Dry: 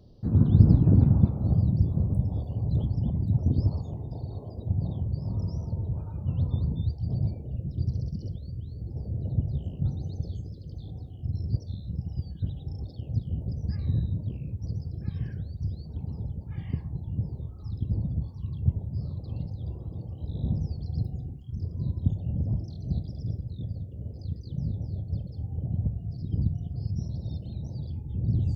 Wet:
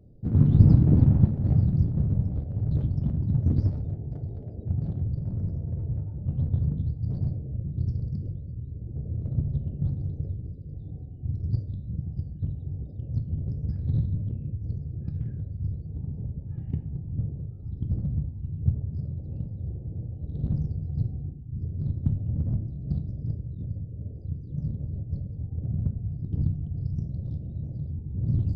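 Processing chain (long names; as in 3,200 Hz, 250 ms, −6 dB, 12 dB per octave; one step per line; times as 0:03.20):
adaptive Wiener filter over 41 samples
0:05.19–0:07.01: low-pass filter 2,000 Hz 6 dB per octave
rectangular room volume 110 cubic metres, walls mixed, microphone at 0.34 metres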